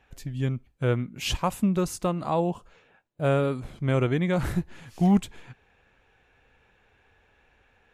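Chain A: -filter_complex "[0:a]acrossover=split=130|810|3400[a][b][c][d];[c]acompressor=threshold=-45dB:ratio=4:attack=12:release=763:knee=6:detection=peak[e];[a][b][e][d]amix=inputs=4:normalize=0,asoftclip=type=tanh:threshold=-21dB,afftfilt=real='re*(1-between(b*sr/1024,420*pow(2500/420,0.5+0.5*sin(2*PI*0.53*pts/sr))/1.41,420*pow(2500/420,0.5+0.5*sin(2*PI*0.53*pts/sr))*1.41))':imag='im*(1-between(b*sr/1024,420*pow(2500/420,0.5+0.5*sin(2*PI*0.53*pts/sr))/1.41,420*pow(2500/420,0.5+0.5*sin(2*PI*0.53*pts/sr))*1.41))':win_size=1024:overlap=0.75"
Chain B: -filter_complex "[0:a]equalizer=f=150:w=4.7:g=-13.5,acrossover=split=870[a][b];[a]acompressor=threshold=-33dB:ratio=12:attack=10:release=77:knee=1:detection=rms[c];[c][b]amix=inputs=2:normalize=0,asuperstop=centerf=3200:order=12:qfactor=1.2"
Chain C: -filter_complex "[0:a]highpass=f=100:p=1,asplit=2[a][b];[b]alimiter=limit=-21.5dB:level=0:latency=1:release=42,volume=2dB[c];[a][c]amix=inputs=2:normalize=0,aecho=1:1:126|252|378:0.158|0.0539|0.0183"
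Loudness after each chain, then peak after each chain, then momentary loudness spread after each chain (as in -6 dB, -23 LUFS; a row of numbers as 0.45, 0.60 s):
-31.0, -35.5, -23.0 LUFS; -19.0, -16.0, -8.0 dBFS; 7, 9, 7 LU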